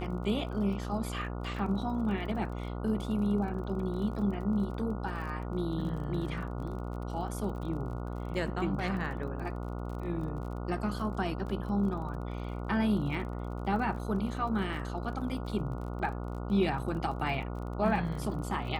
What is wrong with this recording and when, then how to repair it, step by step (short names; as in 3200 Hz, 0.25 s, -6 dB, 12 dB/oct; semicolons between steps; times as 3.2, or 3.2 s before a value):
buzz 60 Hz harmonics 24 -37 dBFS
crackle 39/s -41 dBFS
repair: de-click; de-hum 60 Hz, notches 24